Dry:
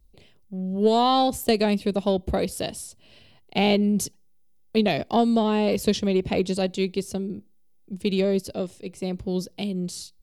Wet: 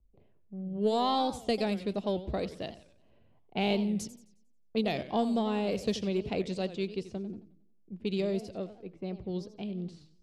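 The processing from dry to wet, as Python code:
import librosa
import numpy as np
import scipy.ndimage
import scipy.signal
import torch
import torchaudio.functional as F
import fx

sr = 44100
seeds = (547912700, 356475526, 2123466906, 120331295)

y = fx.env_lowpass(x, sr, base_hz=980.0, full_db=-17.0)
y = fx.vibrato(y, sr, rate_hz=2.1, depth_cents=27.0)
y = fx.echo_warbled(y, sr, ms=90, feedback_pct=41, rate_hz=2.8, cents=214, wet_db=-14.0)
y = y * librosa.db_to_amplitude(-8.5)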